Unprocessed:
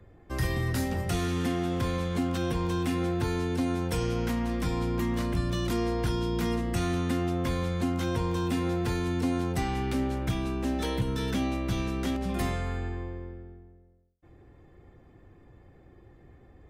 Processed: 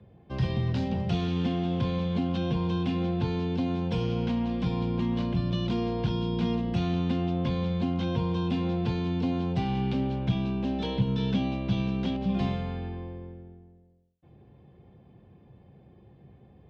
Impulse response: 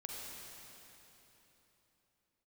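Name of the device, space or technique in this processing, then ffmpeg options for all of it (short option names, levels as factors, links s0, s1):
guitar cabinet: -af "highpass=78,equalizer=f=140:t=q:w=4:g=7,equalizer=f=200:t=q:w=4:g=8,equalizer=f=310:t=q:w=4:g=-6,equalizer=f=1300:t=q:w=4:g=-9,equalizer=f=1900:t=q:w=4:g=-10,equalizer=f=3100:t=q:w=4:g=3,lowpass=f=4200:w=0.5412,lowpass=f=4200:w=1.3066"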